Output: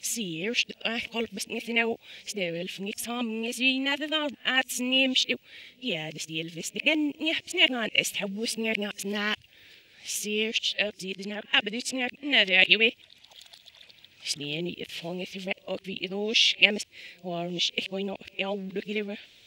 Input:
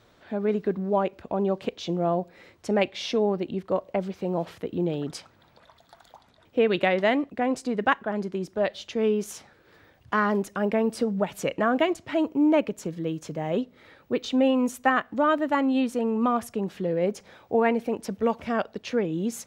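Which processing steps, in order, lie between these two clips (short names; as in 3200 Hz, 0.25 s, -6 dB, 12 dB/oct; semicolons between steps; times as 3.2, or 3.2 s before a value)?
whole clip reversed; resonant high shelf 1800 Hz +14 dB, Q 3; gain -6.5 dB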